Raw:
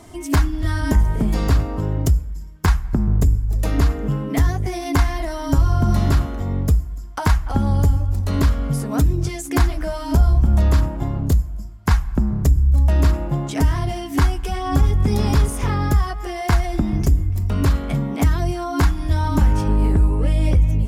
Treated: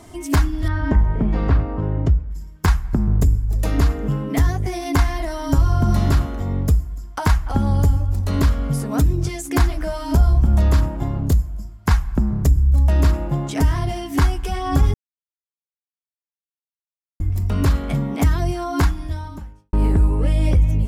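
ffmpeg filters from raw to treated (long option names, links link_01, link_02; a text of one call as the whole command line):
ffmpeg -i in.wav -filter_complex "[0:a]asettb=1/sr,asplit=3[link_01][link_02][link_03];[link_01]atrim=end=0.684[link_04];[link_02]atrim=start=0.68:end=2.31,asetpts=PTS-STARTPTS,afade=type=in:duration=0.004:curve=qsin,afade=type=out:start_time=1.626:duration=0.004:curve=qsin,lowpass=2200[link_05];[link_03]atrim=start=2.306[link_06];[link_04][link_05]acrossfade=duration=0.004:curve1=hsin:curve2=qsin[link_07];[link_07][link_06]acrossfade=duration=0.004:curve1=qsin:curve2=hsin,asplit=4[link_08][link_09][link_10][link_11];[link_08]atrim=end=14.94,asetpts=PTS-STARTPTS,afade=type=out:start_time=14.936:duration=0.004:curve=hsin[link_12];[link_09]atrim=start=14.94:end=17.2,asetpts=PTS-STARTPTS,volume=0[link_13];[link_10]atrim=start=17.2:end=19.73,asetpts=PTS-STARTPTS,afade=type=in:duration=0.004:curve=hsin,afade=type=out:start_time=1.6:duration=0.93:curve=qua[link_14];[link_11]atrim=start=19.73,asetpts=PTS-STARTPTS,afade=type=in:duration=0.004:curve=hsin[link_15];[link_12][link_13][link_14][link_15]concat=n=4:v=0:a=1" out.wav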